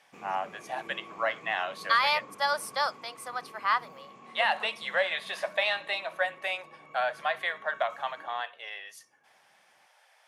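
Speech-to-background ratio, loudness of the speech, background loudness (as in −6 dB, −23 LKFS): 19.5 dB, −30.5 LKFS, −50.0 LKFS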